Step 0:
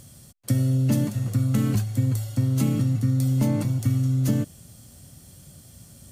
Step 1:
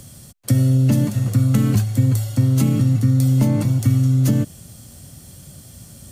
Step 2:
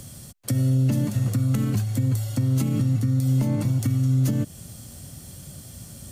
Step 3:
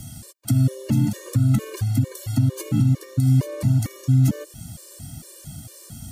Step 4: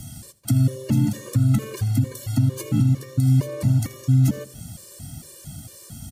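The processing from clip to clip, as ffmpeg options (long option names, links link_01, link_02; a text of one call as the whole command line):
ffmpeg -i in.wav -filter_complex "[0:a]acrossover=split=190[link_01][link_02];[link_02]acompressor=threshold=-26dB:ratio=4[link_03];[link_01][link_03]amix=inputs=2:normalize=0,volume=6.5dB" out.wav
ffmpeg -i in.wav -af "alimiter=limit=-14.5dB:level=0:latency=1:release=248" out.wav
ffmpeg -i in.wav -af "afftfilt=real='re*gt(sin(2*PI*2.2*pts/sr)*(1-2*mod(floor(b*sr/1024/310),2)),0)':imag='im*gt(sin(2*PI*2.2*pts/sr)*(1-2*mod(floor(b*sr/1024/310),2)),0)':win_size=1024:overlap=0.75,volume=4.5dB" out.wav
ffmpeg -i in.wav -af "aecho=1:1:82|164|246:0.106|0.0445|0.0187" out.wav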